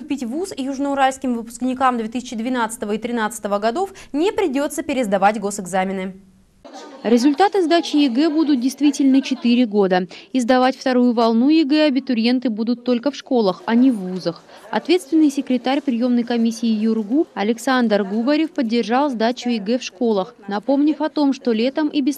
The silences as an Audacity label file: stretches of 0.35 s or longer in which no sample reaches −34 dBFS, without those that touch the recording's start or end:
6.160000	6.650000	silence